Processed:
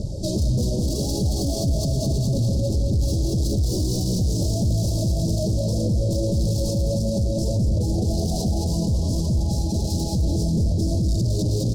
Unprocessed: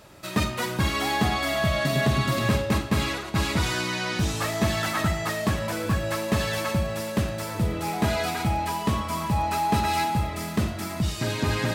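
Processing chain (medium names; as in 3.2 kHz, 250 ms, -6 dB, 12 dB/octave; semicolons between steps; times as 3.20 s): in parallel at -1 dB: compressor with a negative ratio -28 dBFS; on the sum: phaser 1.7 Hz, delay 3.6 ms, feedback 60%; distance through air 93 m; saturation -26.5 dBFS, distortion -6 dB; Chebyshev band-stop 580–4800 Hz, order 3; tone controls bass +11 dB, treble +5 dB; on a send: feedback delay 210 ms, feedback 55%, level -5 dB; on the sum: peak limiter -22 dBFS, peak gain reduction 11.5 dB; trim +7 dB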